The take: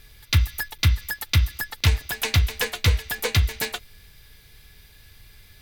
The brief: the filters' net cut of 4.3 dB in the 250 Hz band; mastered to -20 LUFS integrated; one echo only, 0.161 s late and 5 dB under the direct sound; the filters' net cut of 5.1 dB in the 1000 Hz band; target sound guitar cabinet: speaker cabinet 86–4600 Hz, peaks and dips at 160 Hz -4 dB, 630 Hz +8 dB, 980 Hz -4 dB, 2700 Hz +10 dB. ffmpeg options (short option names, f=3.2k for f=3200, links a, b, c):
-af "highpass=86,equalizer=f=160:t=q:w=4:g=-4,equalizer=f=630:t=q:w=4:g=8,equalizer=f=980:t=q:w=4:g=-4,equalizer=f=2.7k:t=q:w=4:g=10,lowpass=f=4.6k:w=0.5412,lowpass=f=4.6k:w=1.3066,equalizer=f=250:t=o:g=-4.5,equalizer=f=1k:t=o:g=-7,aecho=1:1:161:0.562,volume=3.5dB"